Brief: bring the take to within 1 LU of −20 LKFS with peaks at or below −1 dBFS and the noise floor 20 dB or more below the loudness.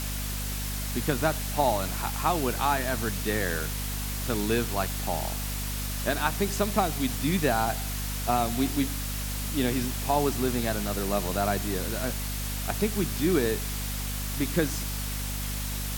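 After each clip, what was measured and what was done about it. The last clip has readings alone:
mains hum 50 Hz; hum harmonics up to 250 Hz; level of the hum −31 dBFS; background noise floor −32 dBFS; target noise floor −48 dBFS; integrated loudness −28.0 LKFS; sample peak −9.0 dBFS; target loudness −20.0 LKFS
→ mains-hum notches 50/100/150/200/250 Hz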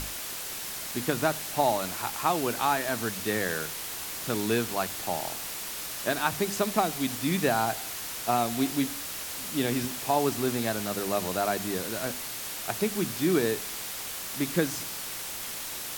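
mains hum none found; background noise floor −37 dBFS; target noise floor −49 dBFS
→ noise reduction from a noise print 12 dB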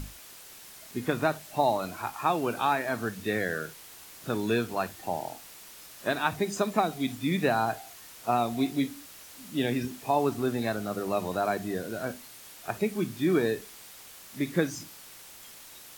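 background noise floor −49 dBFS; target noise floor −50 dBFS
→ noise reduction from a noise print 6 dB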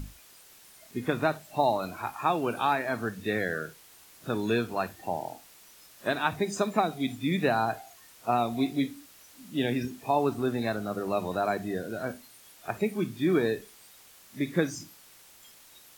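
background noise floor −55 dBFS; integrated loudness −30.0 LKFS; sample peak −10.0 dBFS; target loudness −20.0 LKFS
→ level +10 dB
brickwall limiter −1 dBFS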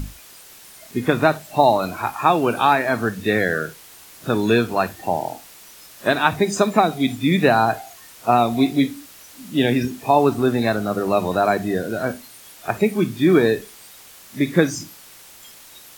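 integrated loudness −20.0 LKFS; sample peak −1.0 dBFS; background noise floor −45 dBFS

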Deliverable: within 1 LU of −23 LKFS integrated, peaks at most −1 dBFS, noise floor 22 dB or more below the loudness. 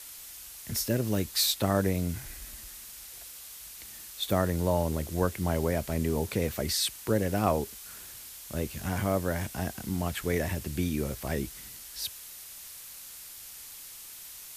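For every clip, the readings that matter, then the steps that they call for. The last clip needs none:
background noise floor −46 dBFS; target noise floor −52 dBFS; integrated loudness −30.0 LKFS; sample peak −10.5 dBFS; target loudness −23.0 LKFS
→ broadband denoise 6 dB, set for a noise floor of −46 dBFS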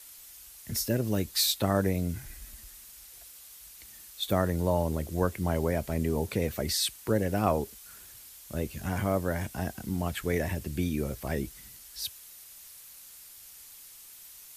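background noise floor −50 dBFS; target noise floor −52 dBFS
→ broadband denoise 6 dB, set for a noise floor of −50 dBFS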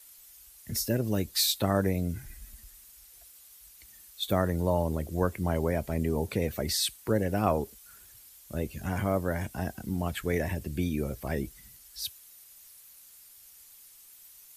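background noise floor −54 dBFS; integrated loudness −30.5 LKFS; sample peak −10.5 dBFS; target loudness −23.0 LKFS
→ level +7.5 dB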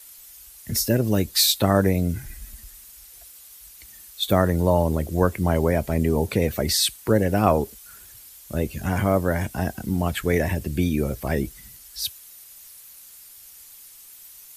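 integrated loudness −23.0 LKFS; sample peak −3.0 dBFS; background noise floor −46 dBFS

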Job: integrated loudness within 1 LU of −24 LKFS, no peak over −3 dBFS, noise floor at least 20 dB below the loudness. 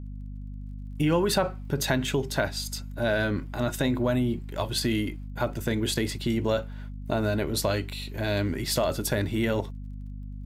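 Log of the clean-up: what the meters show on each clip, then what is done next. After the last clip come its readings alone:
crackle rate 28 per second; mains hum 50 Hz; hum harmonics up to 250 Hz; level of the hum −35 dBFS; integrated loudness −27.5 LKFS; sample peak −11.0 dBFS; target loudness −24.0 LKFS
→ click removal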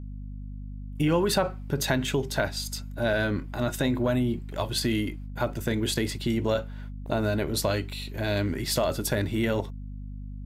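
crackle rate 0.19 per second; mains hum 50 Hz; hum harmonics up to 250 Hz; level of the hum −35 dBFS
→ mains-hum notches 50/100/150/200/250 Hz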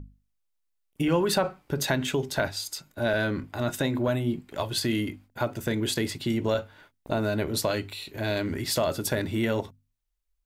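mains hum none found; integrated loudness −28.5 LKFS; sample peak −11.0 dBFS; target loudness −24.0 LKFS
→ level +4.5 dB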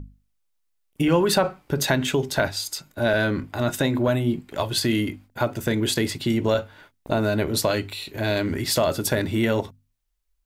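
integrated loudness −24.0 LKFS; sample peak −6.5 dBFS; background noise floor −71 dBFS

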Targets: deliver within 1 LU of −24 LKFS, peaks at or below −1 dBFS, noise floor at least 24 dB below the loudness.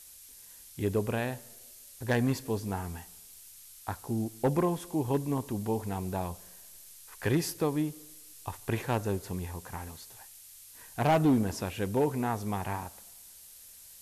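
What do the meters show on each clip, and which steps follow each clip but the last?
share of clipped samples 0.6%; peaks flattened at −19.5 dBFS; background noise floor −52 dBFS; target noise floor −56 dBFS; integrated loudness −31.5 LKFS; sample peak −19.5 dBFS; target loudness −24.0 LKFS
→ clipped peaks rebuilt −19.5 dBFS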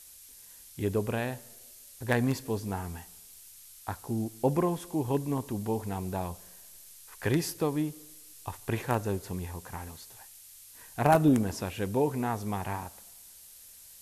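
share of clipped samples 0.0%; background noise floor −52 dBFS; target noise floor −55 dBFS
→ broadband denoise 6 dB, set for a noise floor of −52 dBFS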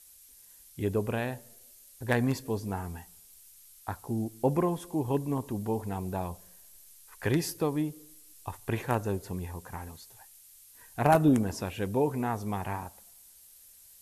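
background noise floor −56 dBFS; integrated loudness −31.0 LKFS; sample peak −10.5 dBFS; target loudness −24.0 LKFS
→ level +7 dB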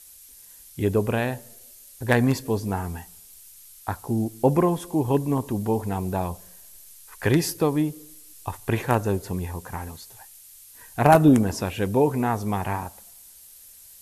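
integrated loudness −24.0 LKFS; sample peak −3.5 dBFS; background noise floor −49 dBFS

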